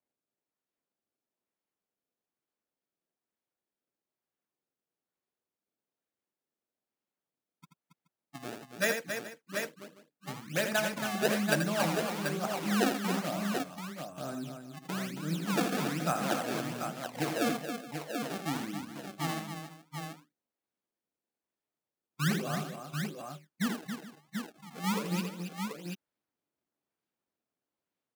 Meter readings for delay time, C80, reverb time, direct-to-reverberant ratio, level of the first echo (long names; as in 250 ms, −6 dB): 82 ms, no reverb audible, no reverb audible, no reverb audible, −7.0 dB